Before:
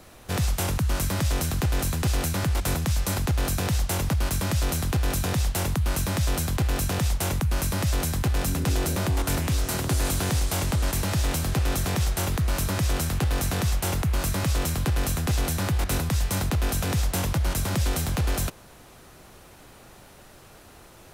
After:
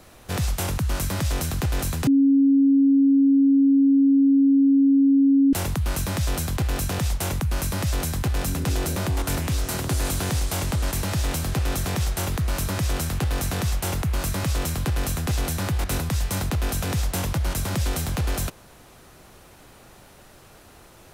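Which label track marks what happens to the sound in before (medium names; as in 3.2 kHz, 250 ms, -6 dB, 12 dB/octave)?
2.070000	5.530000	bleep 275 Hz -13.5 dBFS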